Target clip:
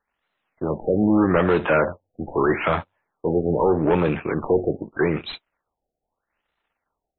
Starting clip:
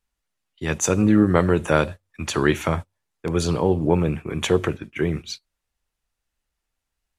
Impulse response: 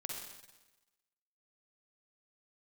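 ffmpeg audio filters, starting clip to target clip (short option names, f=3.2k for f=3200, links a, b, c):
-filter_complex "[0:a]aeval=exprs='if(lt(val(0),0),0.447*val(0),val(0))':c=same,asplit=2[a][b];[b]highpass=f=720:p=1,volume=26dB,asoftclip=type=tanh:threshold=-3.5dB[c];[a][c]amix=inputs=2:normalize=0,lowpass=f=1.8k:p=1,volume=-6dB,afftfilt=real='re*lt(b*sr/1024,770*pow(4200/770,0.5+0.5*sin(2*PI*0.8*pts/sr)))':imag='im*lt(b*sr/1024,770*pow(4200/770,0.5+0.5*sin(2*PI*0.8*pts/sr)))':win_size=1024:overlap=0.75,volume=-4dB"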